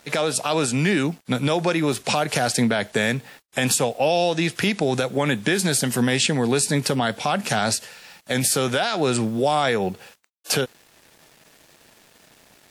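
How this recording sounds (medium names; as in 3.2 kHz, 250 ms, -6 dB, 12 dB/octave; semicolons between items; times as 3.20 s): a quantiser's noise floor 8-bit, dither none; WMA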